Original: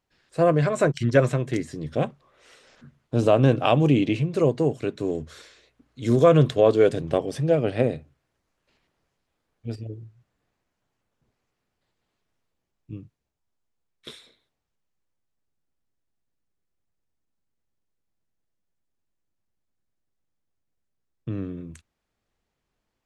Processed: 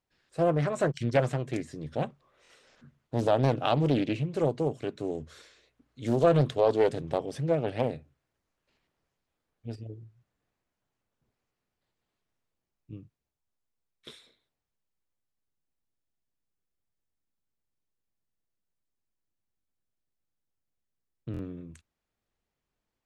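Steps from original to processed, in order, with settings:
buffer that repeats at 0:02.43/0:19.58/0:21.32, samples 1,024, times 2
highs frequency-modulated by the lows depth 0.61 ms
level −6 dB

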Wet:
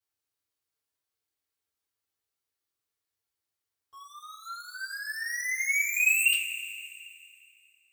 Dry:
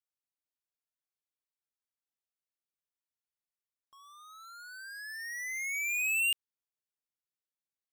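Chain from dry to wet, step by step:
coupled-rooms reverb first 0.24 s, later 2.5 s, from −18 dB, DRR −9 dB
level −2.5 dB

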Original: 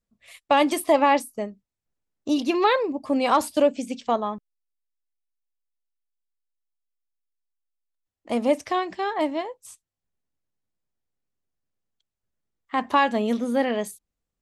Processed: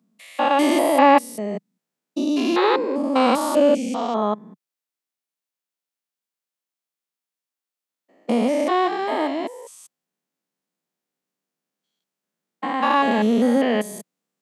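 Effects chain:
spectrum averaged block by block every 200 ms
Butterworth high-pass 160 Hz 48 dB per octave
level +8 dB

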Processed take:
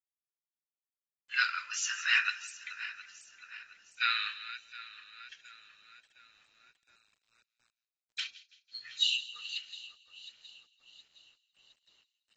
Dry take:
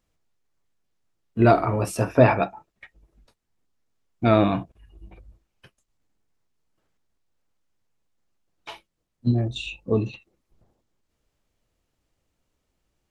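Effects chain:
feedback delay that plays each chunk backwards 379 ms, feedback 66%, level −14 dB
low-pass filter 8,200 Hz 12 dB per octave
noise reduction from a noise print of the clip's start 29 dB
elliptic high-pass filter 1,400 Hz, stop band 50 dB
spectral tilt +4 dB per octave
bit reduction 11 bits
change of speed 1.06×
delay with a high-pass on its return 166 ms, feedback 40%, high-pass 2,500 Hz, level −15 dB
level −1.5 dB
AAC 24 kbit/s 32,000 Hz

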